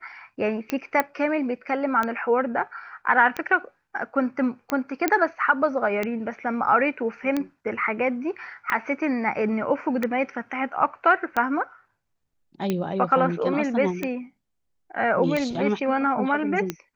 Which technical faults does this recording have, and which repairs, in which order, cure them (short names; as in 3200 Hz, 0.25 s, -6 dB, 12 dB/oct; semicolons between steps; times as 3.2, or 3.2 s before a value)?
tick 45 rpm -12 dBFS
1 pop -8 dBFS
5.08 pop -7 dBFS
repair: de-click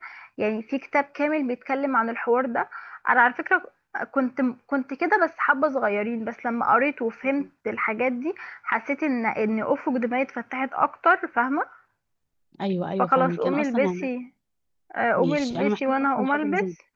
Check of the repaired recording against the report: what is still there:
none